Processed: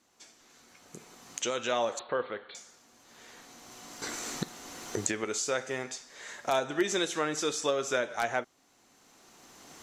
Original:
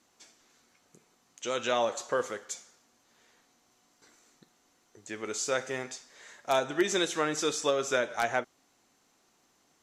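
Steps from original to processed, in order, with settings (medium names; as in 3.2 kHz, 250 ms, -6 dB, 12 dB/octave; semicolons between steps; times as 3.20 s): recorder AGC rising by 14 dB/s; 1.99–2.55 s: Chebyshev low-pass 4.2 kHz, order 8; trim -1.5 dB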